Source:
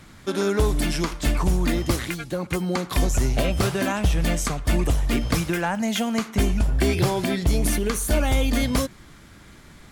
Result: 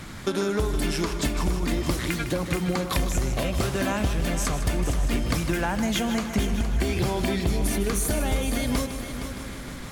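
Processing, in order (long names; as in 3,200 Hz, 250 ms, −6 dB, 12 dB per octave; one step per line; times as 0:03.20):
downward compressor 5 to 1, threshold −32 dBFS, peak gain reduction 14.5 dB
on a send: echo machine with several playback heads 155 ms, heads first and third, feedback 61%, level −11 dB
on the sum: level +8 dB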